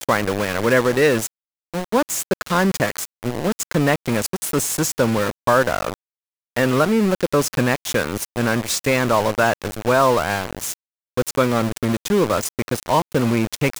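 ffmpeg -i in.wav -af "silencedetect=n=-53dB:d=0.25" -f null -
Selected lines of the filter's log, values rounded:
silence_start: 1.27
silence_end: 1.74 | silence_duration: 0.47
silence_start: 5.94
silence_end: 6.56 | silence_duration: 0.62
silence_start: 10.74
silence_end: 11.17 | silence_duration: 0.44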